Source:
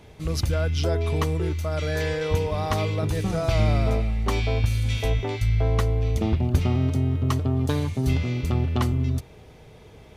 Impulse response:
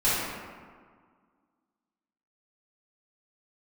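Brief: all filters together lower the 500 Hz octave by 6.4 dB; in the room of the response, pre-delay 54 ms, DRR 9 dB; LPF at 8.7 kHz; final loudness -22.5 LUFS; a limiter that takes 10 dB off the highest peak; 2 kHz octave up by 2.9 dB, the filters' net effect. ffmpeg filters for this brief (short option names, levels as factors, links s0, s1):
-filter_complex "[0:a]lowpass=8700,equalizer=f=500:t=o:g=-8.5,equalizer=f=2000:t=o:g=4,alimiter=limit=0.119:level=0:latency=1,asplit=2[s0][s1];[1:a]atrim=start_sample=2205,adelay=54[s2];[s1][s2]afir=irnorm=-1:irlink=0,volume=0.0668[s3];[s0][s3]amix=inputs=2:normalize=0,volume=1.68"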